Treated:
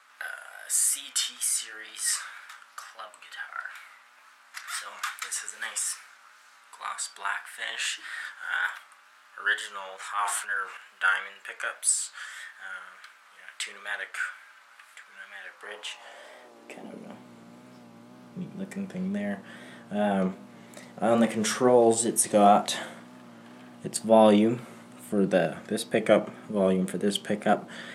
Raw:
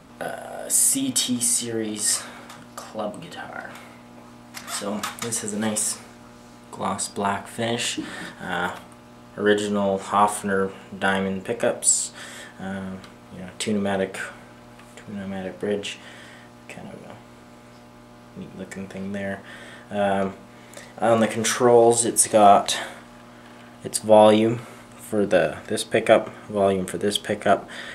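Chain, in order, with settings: 9.96–10.77 transient shaper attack -6 dB, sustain +6 dB; high-pass sweep 1500 Hz -> 170 Hz, 15.47–17.25; wow and flutter 67 cents; gain -6 dB

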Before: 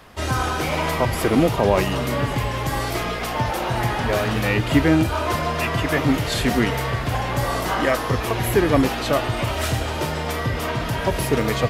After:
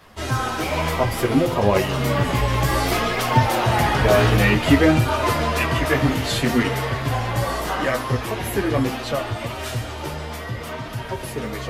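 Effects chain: Doppler pass-by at 3.98, 5 m/s, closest 6.6 m; chorus voices 2, 0.59 Hz, delay 12 ms, depth 4.4 ms; in parallel at 0 dB: vocal rider within 4 dB 0.5 s; on the sum: de-hum 86.12 Hz, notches 32; gain +3 dB

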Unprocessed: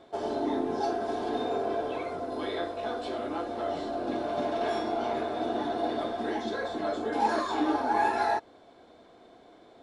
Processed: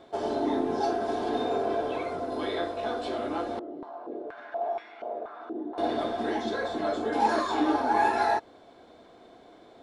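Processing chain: 3.59–5.78 stepped band-pass 4.2 Hz 330–2100 Hz; gain +2 dB

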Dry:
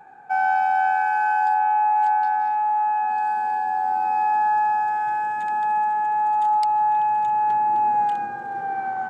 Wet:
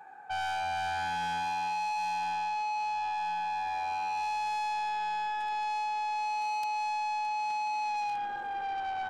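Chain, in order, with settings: low shelf 340 Hz -11 dB; soft clip -29.5 dBFS, distortion -9 dB; gain -1.5 dB

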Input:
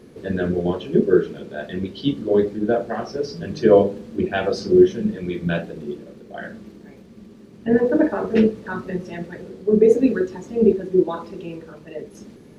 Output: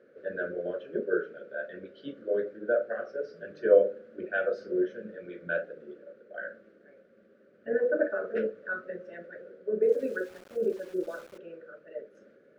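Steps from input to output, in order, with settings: double band-pass 910 Hz, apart 1.4 oct; 9.82–11.38 sample gate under -48.5 dBFS

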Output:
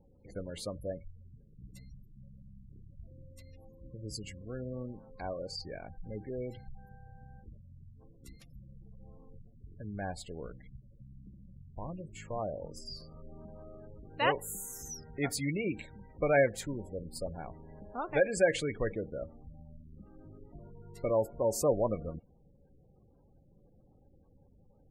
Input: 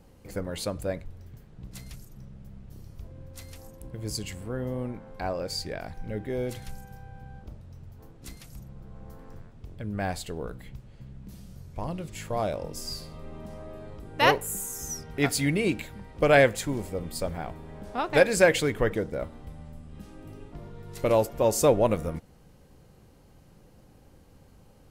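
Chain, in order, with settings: resonator 560 Hz, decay 0.17 s, harmonics all, mix 40%; spectral gate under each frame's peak -20 dB strong; gain -3.5 dB

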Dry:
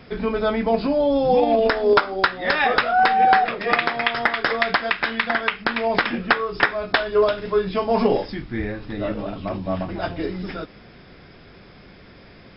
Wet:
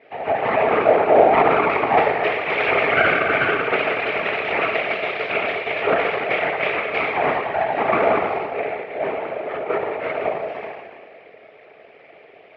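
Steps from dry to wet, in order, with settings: dynamic EQ 540 Hz, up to +7 dB, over -30 dBFS, Q 0.73; in parallel at +2 dB: limiter -8 dBFS, peak gain reduction 8 dB; on the sum: FDN reverb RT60 1.6 s, low-frequency decay 0.75×, high-frequency decay 0.9×, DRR -8.5 dB; full-wave rectifier; whisperiser; speaker cabinet 420–2600 Hz, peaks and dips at 430 Hz +10 dB, 650 Hz +10 dB, 1000 Hz -9 dB, 1500 Hz -5 dB, 2300 Hz +7 dB; ending taper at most 120 dB/s; gain -13.5 dB

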